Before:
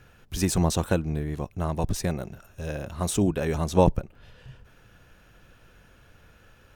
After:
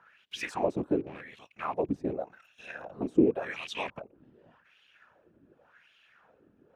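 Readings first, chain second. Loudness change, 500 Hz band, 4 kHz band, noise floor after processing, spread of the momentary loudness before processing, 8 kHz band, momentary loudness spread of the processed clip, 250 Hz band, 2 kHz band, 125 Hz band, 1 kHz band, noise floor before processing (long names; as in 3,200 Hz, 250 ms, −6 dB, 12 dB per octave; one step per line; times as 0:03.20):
−5.0 dB, −4.0 dB, −6.0 dB, −67 dBFS, 13 LU, below −20 dB, 21 LU, −3.5 dB, −0.5 dB, −17.5 dB, −6.0 dB, −57 dBFS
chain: loose part that buzzes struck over −26 dBFS, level −26 dBFS
random phases in short frames
LFO wah 0.88 Hz 280–3,100 Hz, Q 3.4
level +5 dB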